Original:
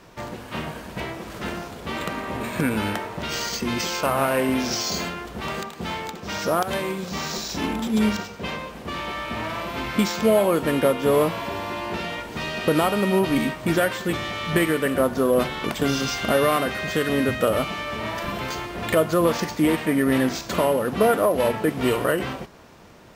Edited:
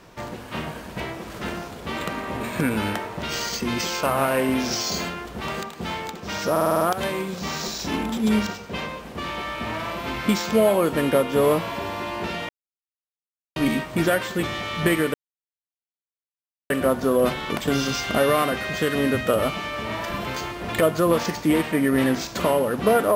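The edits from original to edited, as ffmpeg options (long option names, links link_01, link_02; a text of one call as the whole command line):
ffmpeg -i in.wav -filter_complex "[0:a]asplit=10[link_01][link_02][link_03][link_04][link_05][link_06][link_07][link_08][link_09][link_10];[link_01]atrim=end=6.562[link_11];[link_02]atrim=start=6.508:end=6.562[link_12];[link_03]atrim=start=6.508:end=6.562[link_13];[link_04]atrim=start=6.508:end=6.562[link_14];[link_05]atrim=start=6.508:end=6.562[link_15];[link_06]atrim=start=6.508:end=6.562[link_16];[link_07]atrim=start=6.508:end=12.19,asetpts=PTS-STARTPTS,afade=type=out:start_time=5.678:duration=0.004:curve=hsin[link_17];[link_08]atrim=start=12.19:end=13.26,asetpts=PTS-STARTPTS,volume=0[link_18];[link_09]atrim=start=13.26:end=14.84,asetpts=PTS-STARTPTS,afade=type=in:duration=0.004:curve=hsin,afade=type=out:start_time=1.576:duration=0.004:curve=hsin,apad=pad_dur=1.56[link_19];[link_10]atrim=start=14.84,asetpts=PTS-STARTPTS,afade=type=in:duration=0.004:curve=hsin[link_20];[link_11][link_12]acrossfade=duration=0.004:curve1=hsin:curve2=hsin[link_21];[link_21][link_13]acrossfade=duration=0.004:curve1=hsin:curve2=hsin[link_22];[link_22][link_14]acrossfade=duration=0.004:curve1=hsin:curve2=hsin[link_23];[link_23][link_15]acrossfade=duration=0.004:curve1=hsin:curve2=hsin[link_24];[link_24][link_16]acrossfade=duration=0.004:curve1=hsin:curve2=hsin[link_25];[link_17][link_18][link_19][link_20]concat=n=4:v=0:a=1[link_26];[link_25][link_26]acrossfade=duration=0.004:curve1=hsin:curve2=hsin" out.wav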